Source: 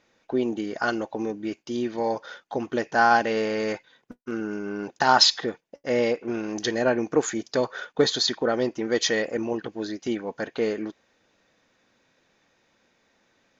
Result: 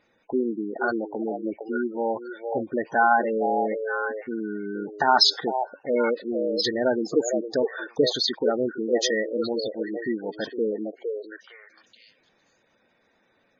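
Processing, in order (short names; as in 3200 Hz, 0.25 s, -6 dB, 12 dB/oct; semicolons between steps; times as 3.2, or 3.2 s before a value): delay with a stepping band-pass 0.459 s, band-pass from 560 Hz, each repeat 1.4 oct, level -3 dB; spectral gate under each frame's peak -15 dB strong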